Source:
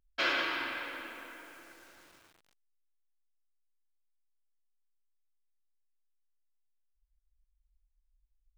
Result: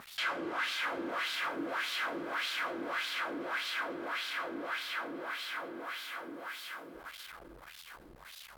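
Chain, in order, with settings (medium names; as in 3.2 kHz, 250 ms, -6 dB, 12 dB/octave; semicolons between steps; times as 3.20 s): high-pass 110 Hz 6 dB/octave; treble shelf 8 kHz +7 dB; small resonant body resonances 240/1200/2100 Hz, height 6 dB; on a send: multi-head delay 248 ms, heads first and third, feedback 60%, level -13 dB; on the sum: power-law waveshaper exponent 0.5; fifteen-band graphic EQ 160 Hz +10 dB, 2.5 kHz -7 dB, 6.3 kHz -7 dB, 16 kHz +9 dB; peak limiter -29.5 dBFS, peak gain reduction 9.5 dB; waveshaping leveller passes 5; wah-wah 1.7 Hz 320–3900 Hz, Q 2.1; trim +3.5 dB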